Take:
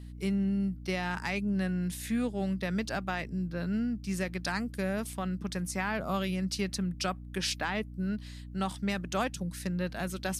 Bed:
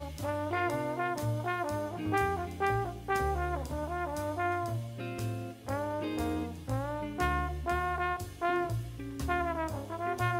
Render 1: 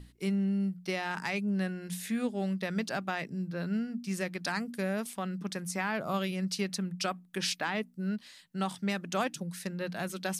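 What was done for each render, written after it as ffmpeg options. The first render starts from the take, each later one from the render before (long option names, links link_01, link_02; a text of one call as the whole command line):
ffmpeg -i in.wav -af "bandreject=frequency=60:width_type=h:width=6,bandreject=frequency=120:width_type=h:width=6,bandreject=frequency=180:width_type=h:width=6,bandreject=frequency=240:width_type=h:width=6,bandreject=frequency=300:width_type=h:width=6" out.wav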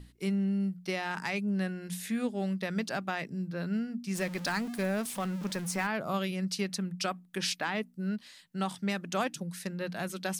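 ffmpeg -i in.wav -filter_complex "[0:a]asettb=1/sr,asplit=3[link_01][link_02][link_03];[link_01]atrim=end=4.154[link_04];[link_02]atrim=start=4.15:end=5.87,asetpts=PTS-STARTPTS,afade=type=in:duration=0.004:curve=qsin,afade=type=out:start_time=1.716:duration=0.004:curve=qsin,aeval=exprs='val(0)+0.5*0.0112*sgn(val(0))':channel_layout=same[link_05];[link_03]atrim=start=5.866[link_06];[link_04][link_05]acrossfade=duration=0.004:curve1=hsin:curve2=qsin[link_07];[link_07][link_06]acrossfade=duration=0.004:curve1=qsin:curve2=hsin" out.wav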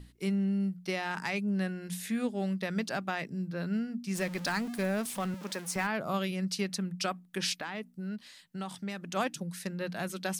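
ffmpeg -i in.wav -filter_complex "[0:a]asettb=1/sr,asplit=3[link_01][link_02][link_03];[link_01]atrim=end=5.344[link_04];[link_02]atrim=start=5.34:end=5.76,asetpts=PTS-STARTPTS,afade=type=in:duration=0.004:curve=qsin,afade=type=out:start_time=0.416:duration=0.004:curve=qsin,highpass=280[link_05];[link_03]atrim=start=5.756[link_06];[link_04][link_05]acrossfade=duration=0.004:curve1=hsin:curve2=qsin[link_07];[link_07][link_06]acrossfade=duration=0.004:curve1=qsin:curve2=hsin,asplit=3[link_08][link_09][link_10];[link_08]afade=type=out:start_time=7.57:duration=0.02[link_11];[link_09]acompressor=threshold=-37dB:ratio=2:attack=3.2:release=140:knee=1:detection=peak,afade=type=in:start_time=7.57:duration=0.02,afade=type=out:start_time=9.15:duration=0.02[link_12];[link_10]afade=type=in:start_time=9.15:duration=0.02[link_13];[link_11][link_12][link_13]amix=inputs=3:normalize=0" out.wav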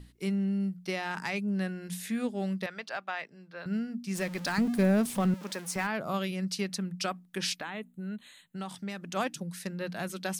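ffmpeg -i in.wav -filter_complex "[0:a]asettb=1/sr,asplit=3[link_01][link_02][link_03];[link_01]atrim=end=2.664[link_04];[link_02]atrim=start=2.66:end=3.66,asetpts=PTS-STARTPTS,afade=type=in:duration=0.004:curve=qsin,afade=type=out:start_time=0.996:duration=0.004:curve=qsin,acrossover=split=520 4600:gain=0.112 1 0.2[link_05][link_06][link_07];[link_05][link_06][link_07]amix=inputs=3:normalize=0[link_08];[link_03]atrim=start=3.656[link_09];[link_04][link_08]acrossfade=duration=0.004:curve1=hsin:curve2=qsin[link_10];[link_10][link_09]acrossfade=duration=0.004:curve1=qsin:curve2=hsin,asettb=1/sr,asplit=3[link_11][link_12][link_13];[link_11]atrim=end=4.584[link_14];[link_12]atrim=start=4.58:end=5.34,asetpts=PTS-STARTPTS,afade=type=in:duration=0.004:curve=qsin,afade=type=out:start_time=0.756:duration=0.004:curve=qsin,lowshelf=frequency=490:gain=10[link_15];[link_13]atrim=start=5.336[link_16];[link_14][link_15]acrossfade=duration=0.004:curve1=hsin:curve2=qsin[link_17];[link_17][link_16]acrossfade=duration=0.004:curve1=qsin:curve2=hsin,asettb=1/sr,asplit=3[link_18][link_19][link_20];[link_18]atrim=end=7.634[link_21];[link_19]atrim=start=7.63:end=8.56,asetpts=PTS-STARTPTS,afade=type=in:duration=0.004:curve=qsin,afade=type=out:start_time=0.926:duration=0.004:curve=qsin,asuperstop=centerf=5200:order=12:qfactor=2.4[link_22];[link_20]atrim=start=8.556[link_23];[link_21][link_22]acrossfade=duration=0.004:curve1=hsin:curve2=qsin[link_24];[link_24][link_23]acrossfade=duration=0.004:curve1=qsin:curve2=hsin" out.wav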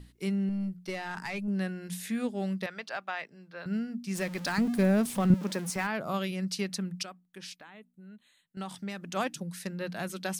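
ffmpeg -i in.wav -filter_complex "[0:a]asettb=1/sr,asplit=3[link_01][link_02][link_03];[link_01]atrim=end=0.494[link_04];[link_02]atrim=start=0.49:end=1.48,asetpts=PTS-STARTPTS,afade=type=in:duration=0.004:curve=qsin,afade=type=out:start_time=0.986:duration=0.004:curve=qsin,aeval=exprs='(tanh(14.1*val(0)+0.4)-tanh(0.4))/14.1':channel_layout=same[link_05];[link_03]atrim=start=1.476[link_06];[link_04][link_05]acrossfade=duration=0.004:curve1=hsin:curve2=qsin[link_07];[link_07][link_06]acrossfade=duration=0.004:curve1=qsin:curve2=hsin,asettb=1/sr,asplit=3[link_08][link_09][link_10];[link_08]atrim=end=5.304[link_11];[link_09]atrim=start=5.3:end=5.7,asetpts=PTS-STARTPTS,afade=type=in:duration=0.004:curve=qsin,afade=type=out:start_time=0.396:duration=0.004:curve=qsin,lowshelf=frequency=400:gain=10.5[link_12];[link_10]atrim=start=5.696[link_13];[link_11][link_12]acrossfade=duration=0.004:curve1=hsin:curve2=qsin[link_14];[link_14][link_13]acrossfade=duration=0.004:curve1=qsin:curve2=hsin,asplit=3[link_15][link_16][link_17];[link_15]atrim=end=7.032[link_18];[link_16]atrim=start=7.028:end=8.572,asetpts=PTS-STARTPTS,volume=-12dB[link_19];[link_17]atrim=start=8.568[link_20];[link_18][link_19]acrossfade=duration=0.004:curve1=hsin:curve2=hsin[link_21];[link_21][link_20]acrossfade=duration=0.004:curve1=hsin:curve2=hsin" out.wav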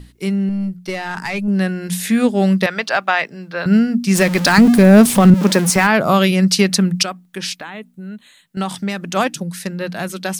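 ffmpeg -i in.wav -af "dynaudnorm=framelen=250:gausssize=17:maxgain=9dB,alimiter=level_in=11dB:limit=-1dB:release=50:level=0:latency=1" out.wav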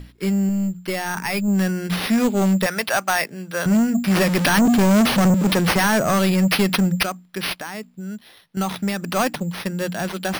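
ffmpeg -i in.wav -af "acrusher=samples=6:mix=1:aa=0.000001,asoftclip=type=tanh:threshold=-12.5dB" out.wav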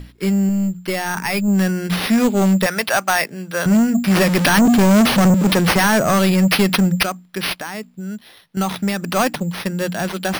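ffmpeg -i in.wav -af "volume=3dB" out.wav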